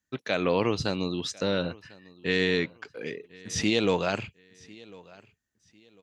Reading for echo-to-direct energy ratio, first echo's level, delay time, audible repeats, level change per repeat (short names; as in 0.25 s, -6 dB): -22.5 dB, -23.0 dB, 1.049 s, 2, -10.5 dB